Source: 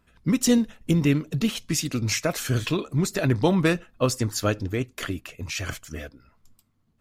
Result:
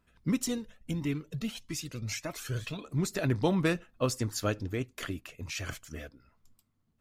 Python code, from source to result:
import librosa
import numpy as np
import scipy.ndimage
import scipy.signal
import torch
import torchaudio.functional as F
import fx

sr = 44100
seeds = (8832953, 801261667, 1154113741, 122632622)

y = fx.comb_cascade(x, sr, direction='rising', hz=1.6, at=(0.44, 2.84))
y = y * librosa.db_to_amplitude(-6.5)